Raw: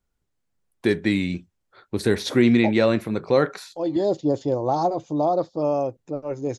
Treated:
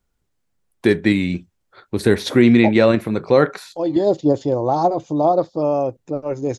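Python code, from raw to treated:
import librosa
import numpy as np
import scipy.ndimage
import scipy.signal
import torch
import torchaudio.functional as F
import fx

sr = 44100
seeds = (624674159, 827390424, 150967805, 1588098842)

p1 = fx.dynamic_eq(x, sr, hz=5700.0, q=0.97, threshold_db=-44.0, ratio=4.0, max_db=-4)
p2 = fx.level_steps(p1, sr, step_db=10)
p3 = p1 + F.gain(torch.from_numpy(p2), -2.5).numpy()
y = F.gain(torch.from_numpy(p3), 1.5).numpy()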